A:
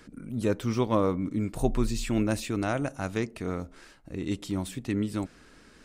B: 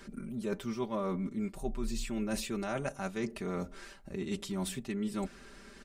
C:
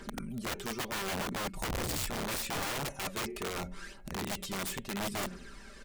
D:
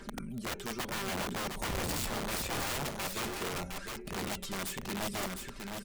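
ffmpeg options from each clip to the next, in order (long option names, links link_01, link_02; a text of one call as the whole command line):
ffmpeg -i in.wav -af "equalizer=frequency=160:width=4.5:gain=-4.5,aecho=1:1:5.1:0.84,areverse,acompressor=threshold=-32dB:ratio=6,areverse" out.wav
ffmpeg -i in.wav -af "bandreject=frequency=182.1:width_type=h:width=4,bandreject=frequency=364.2:width_type=h:width=4,bandreject=frequency=546.3:width_type=h:width=4,bandreject=frequency=728.4:width_type=h:width=4,bandreject=frequency=910.5:width_type=h:width=4,bandreject=frequency=1092.6:width_type=h:width=4,bandreject=frequency=1274.7:width_type=h:width=4,bandreject=frequency=1456.8:width_type=h:width=4,bandreject=frequency=1638.9:width_type=h:width=4,bandreject=frequency=1821:width_type=h:width=4,bandreject=frequency=2003.1:width_type=h:width=4,bandreject=frequency=2185.2:width_type=h:width=4,bandreject=frequency=2367.3:width_type=h:width=4,bandreject=frequency=2549.4:width_type=h:width=4,bandreject=frequency=2731.5:width_type=h:width=4,bandreject=frequency=2913.6:width_type=h:width=4,bandreject=frequency=3095.7:width_type=h:width=4,bandreject=frequency=3277.8:width_type=h:width=4,bandreject=frequency=3459.9:width_type=h:width=4,bandreject=frequency=3642:width_type=h:width=4,bandreject=frequency=3824.1:width_type=h:width=4,bandreject=frequency=4006.2:width_type=h:width=4,aphaser=in_gain=1:out_gain=1:delay=2.6:decay=0.48:speed=0.75:type=triangular,aeval=exprs='(mod(35.5*val(0)+1,2)-1)/35.5':channel_layout=same,volume=1dB" out.wav
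ffmpeg -i in.wav -af "aecho=1:1:709:0.562,volume=-1dB" out.wav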